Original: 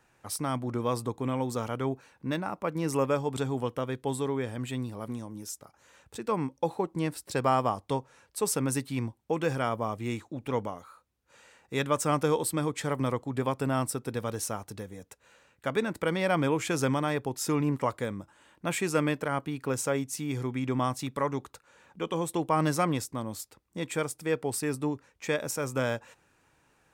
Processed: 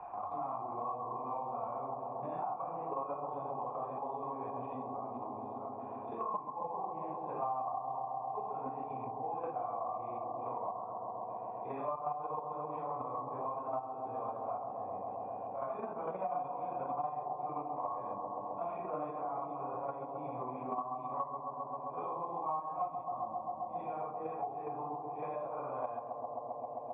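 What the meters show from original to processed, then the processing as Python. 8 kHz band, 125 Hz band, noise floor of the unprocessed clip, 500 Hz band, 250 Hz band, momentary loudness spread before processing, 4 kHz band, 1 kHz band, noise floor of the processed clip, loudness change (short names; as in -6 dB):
under -40 dB, -20.0 dB, -69 dBFS, -9.0 dB, -17.0 dB, 11 LU, under -35 dB, -1.5 dB, -45 dBFS, -9.0 dB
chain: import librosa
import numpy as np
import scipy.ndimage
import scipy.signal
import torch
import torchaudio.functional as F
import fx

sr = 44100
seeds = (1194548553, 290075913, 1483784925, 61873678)

p1 = fx.phase_scramble(x, sr, seeds[0], window_ms=200)
p2 = fx.level_steps(p1, sr, step_db=9)
p3 = fx.formant_cascade(p2, sr, vowel='a')
p4 = p3 + fx.echo_bbd(p3, sr, ms=132, stages=1024, feedback_pct=83, wet_db=-8, dry=0)
p5 = fx.band_squash(p4, sr, depth_pct=100)
y = F.gain(torch.from_numpy(p5), 8.0).numpy()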